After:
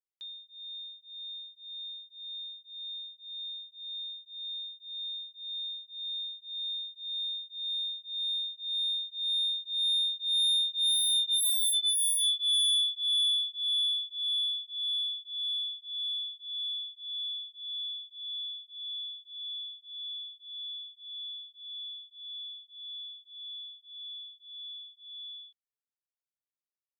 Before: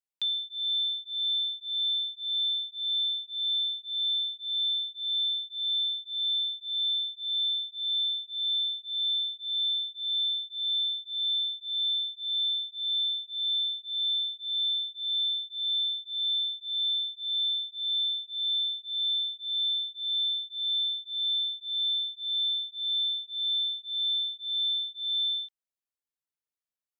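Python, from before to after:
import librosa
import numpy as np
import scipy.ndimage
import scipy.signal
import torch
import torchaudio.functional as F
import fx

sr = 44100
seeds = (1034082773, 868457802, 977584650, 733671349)

y = fx.doppler_pass(x, sr, speed_mps=10, closest_m=3.3, pass_at_s=11.7)
y = fx.fold_sine(y, sr, drive_db=13, ceiling_db=-24.0)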